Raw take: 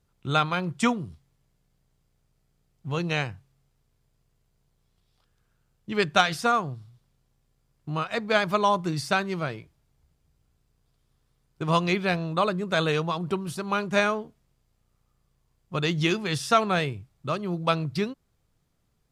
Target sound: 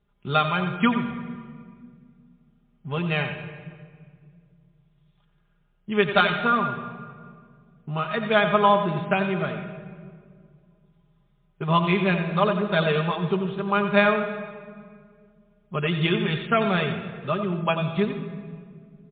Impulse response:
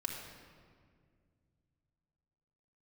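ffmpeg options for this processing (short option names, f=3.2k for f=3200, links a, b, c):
-filter_complex "[0:a]aecho=1:1:4.9:0.71,asplit=2[a][b];[1:a]atrim=start_sample=2205,adelay=89[c];[b][c]afir=irnorm=-1:irlink=0,volume=-8dB[d];[a][d]amix=inputs=2:normalize=0" -ar 8000 -c:a libmp3lame -b:a 24k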